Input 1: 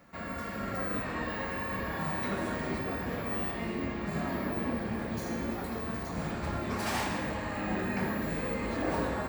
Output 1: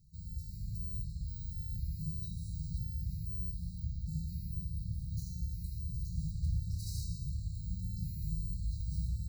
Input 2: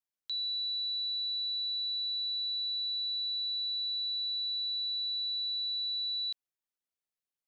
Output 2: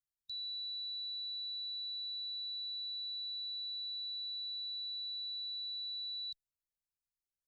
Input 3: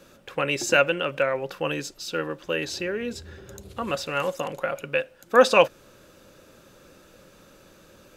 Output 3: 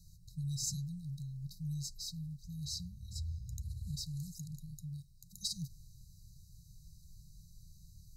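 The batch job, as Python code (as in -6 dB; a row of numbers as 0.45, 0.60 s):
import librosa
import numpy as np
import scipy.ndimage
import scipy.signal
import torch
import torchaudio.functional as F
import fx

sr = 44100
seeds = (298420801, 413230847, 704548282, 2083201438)

y = fx.brickwall_bandstop(x, sr, low_hz=180.0, high_hz=3800.0)
y = fx.tone_stack(y, sr, knobs='10-0-1')
y = y * 10.0 ** (14.5 / 20.0)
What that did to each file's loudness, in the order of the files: -6.0, -7.5, -17.0 LU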